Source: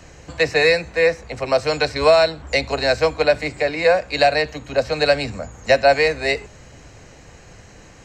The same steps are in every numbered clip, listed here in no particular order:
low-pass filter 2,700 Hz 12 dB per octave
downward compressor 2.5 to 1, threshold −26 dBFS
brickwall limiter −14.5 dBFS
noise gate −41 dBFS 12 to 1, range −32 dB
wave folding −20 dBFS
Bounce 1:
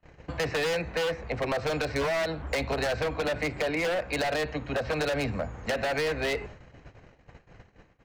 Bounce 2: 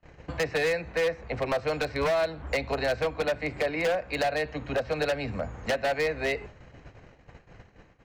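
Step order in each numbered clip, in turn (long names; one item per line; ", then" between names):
low-pass filter, then brickwall limiter, then noise gate, then wave folding, then downward compressor
downward compressor, then noise gate, then low-pass filter, then wave folding, then brickwall limiter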